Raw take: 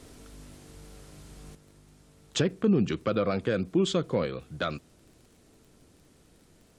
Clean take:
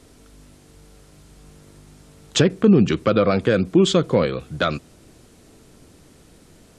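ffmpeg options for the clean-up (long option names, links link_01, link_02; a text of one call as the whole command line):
ffmpeg -i in.wav -af "adeclick=threshold=4,asetnsamples=nb_out_samples=441:pad=0,asendcmd='1.55 volume volume 9.5dB',volume=0dB" out.wav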